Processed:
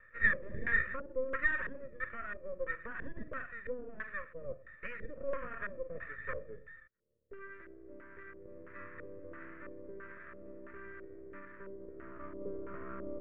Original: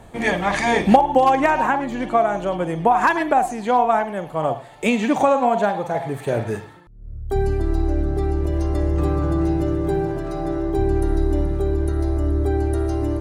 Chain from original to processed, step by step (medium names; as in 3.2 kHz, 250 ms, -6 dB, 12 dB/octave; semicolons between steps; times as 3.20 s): high-pass 130 Hz; peak limiter -12 dBFS, peak gain reduction 11.5 dB; cascade formant filter e; band-pass sweep 1.8 kHz -> 840 Hz, 11.40–12.44 s; half-wave rectifier; LFO low-pass square 1.5 Hz 510–1500 Hz; static phaser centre 1.9 kHz, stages 4; trim +11.5 dB